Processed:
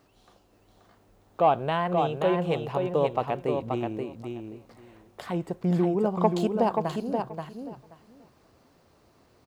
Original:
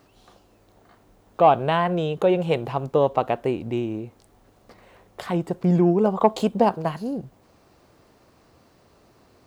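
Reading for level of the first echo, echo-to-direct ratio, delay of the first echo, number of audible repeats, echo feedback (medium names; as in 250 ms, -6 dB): -5.0 dB, -5.0 dB, 530 ms, 2, 15%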